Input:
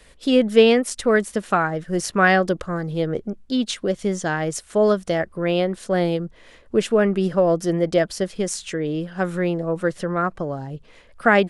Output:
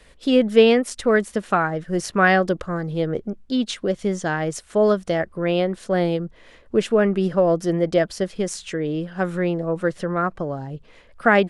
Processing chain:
high-shelf EQ 6,100 Hz −6 dB

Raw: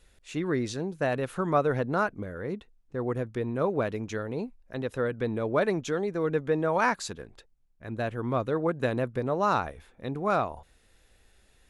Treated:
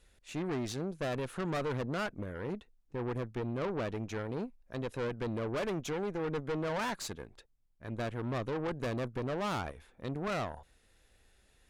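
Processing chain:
tube saturation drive 31 dB, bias 0.7
0:03.34–0:04.27: high-shelf EQ 6,900 Hz −5.5 dB

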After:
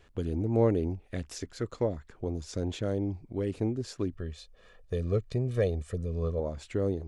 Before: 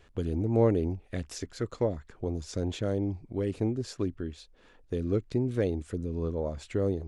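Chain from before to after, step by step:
0:04.12–0:06.40: comb filter 1.7 ms, depth 75%
level −1 dB

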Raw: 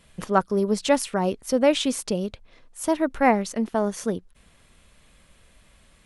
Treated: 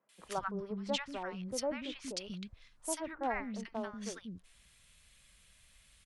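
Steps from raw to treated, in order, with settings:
treble cut that deepens with the level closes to 1,400 Hz, closed at −17.5 dBFS
guitar amp tone stack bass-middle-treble 5-5-5
three-band delay without the direct sound mids, highs, lows 90/190 ms, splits 270/1,100 Hz
level +4 dB

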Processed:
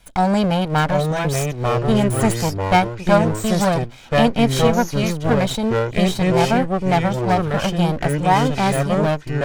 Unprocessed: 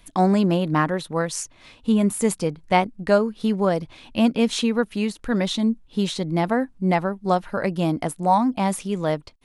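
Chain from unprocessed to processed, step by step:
lower of the sound and its delayed copy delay 1.3 ms
delay with pitch and tempo change per echo 698 ms, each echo −4 semitones, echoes 2
level +3 dB

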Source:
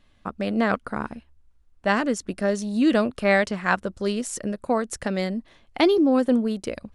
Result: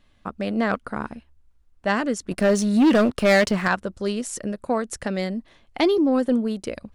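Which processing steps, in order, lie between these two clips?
0:02.31–0:03.68: leveller curve on the samples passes 2
soft clipping −8.5 dBFS, distortion −24 dB

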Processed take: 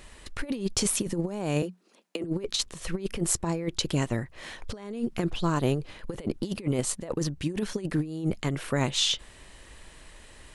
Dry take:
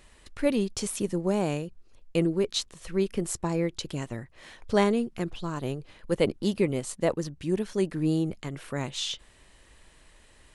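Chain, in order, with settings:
0:01.62–0:02.24: Chebyshev high-pass filter 180 Hz, order 8
compressor whose output falls as the input rises −30 dBFS, ratio −0.5
level +3 dB

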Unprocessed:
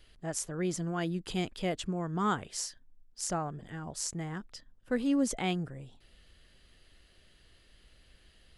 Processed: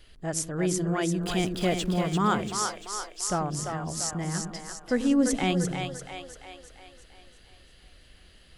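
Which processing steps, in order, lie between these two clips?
0:01.22–0:02.01: converter with a step at zero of −46 dBFS
echo with a time of its own for lows and highs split 410 Hz, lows 94 ms, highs 343 ms, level −5 dB
level +5 dB

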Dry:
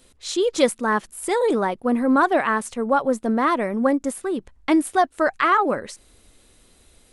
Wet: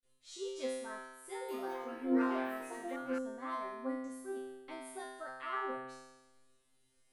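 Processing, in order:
noise gate with hold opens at −47 dBFS
tuned comb filter 130 Hz, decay 1.1 s, harmonics all, mix 100%
0:01.28–0:03.55: delay with pitch and tempo change per echo 204 ms, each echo +5 semitones, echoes 2, each echo −6 dB
level −3.5 dB

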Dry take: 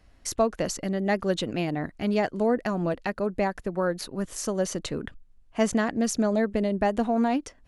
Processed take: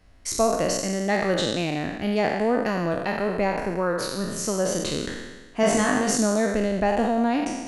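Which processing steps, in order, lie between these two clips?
peak hold with a decay on every bin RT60 1.26 s
0:05.61–0:06.17: flutter between parallel walls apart 3.4 metres, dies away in 0.3 s

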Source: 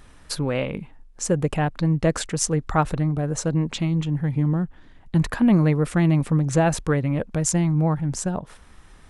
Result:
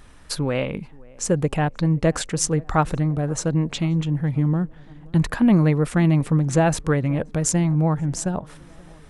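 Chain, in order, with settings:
tape delay 529 ms, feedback 74%, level −23.5 dB, low-pass 1,300 Hz
level +1 dB

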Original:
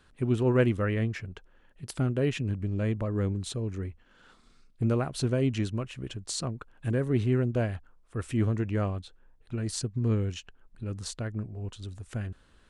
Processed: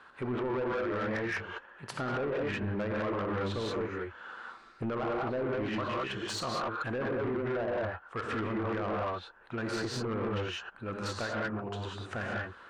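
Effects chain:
resonant band-pass 1,100 Hz, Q 1.4
reverb whose tail is shaped and stops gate 220 ms rising, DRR −2 dB
treble cut that deepens with the level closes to 1,200 Hz, closed at −33 dBFS
in parallel at 0 dB: compressor whose output falls as the input rises −42 dBFS, ratio −1
on the sum: brickwall limiter −26 dBFS, peak gain reduction 7 dB
soft clipping −34.5 dBFS, distortion −12 dB
level +6.5 dB

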